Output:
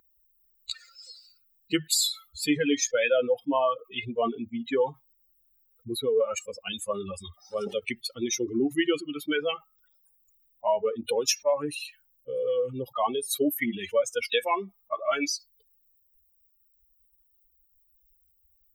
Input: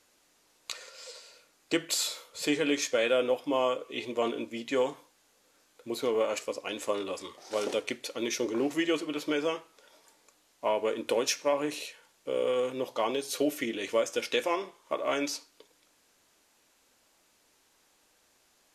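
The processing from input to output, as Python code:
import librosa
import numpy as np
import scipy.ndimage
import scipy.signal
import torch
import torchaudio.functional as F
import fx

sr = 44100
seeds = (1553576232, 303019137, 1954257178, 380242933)

y = fx.bin_expand(x, sr, power=3.0)
y = fx.wow_flutter(y, sr, seeds[0], rate_hz=2.1, depth_cents=17.0)
y = fx.env_flatten(y, sr, amount_pct=50)
y = y * 10.0 ** (6.0 / 20.0)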